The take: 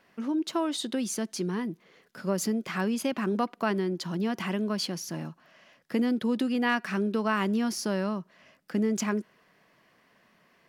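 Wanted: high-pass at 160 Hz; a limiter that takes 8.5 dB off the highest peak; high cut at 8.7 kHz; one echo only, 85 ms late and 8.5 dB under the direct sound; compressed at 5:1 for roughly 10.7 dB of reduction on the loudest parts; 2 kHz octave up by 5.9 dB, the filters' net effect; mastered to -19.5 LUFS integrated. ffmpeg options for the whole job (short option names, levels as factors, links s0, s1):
-af "highpass=160,lowpass=8700,equalizer=f=2000:t=o:g=7.5,acompressor=threshold=0.0316:ratio=5,alimiter=level_in=1.26:limit=0.0631:level=0:latency=1,volume=0.794,aecho=1:1:85:0.376,volume=6.31"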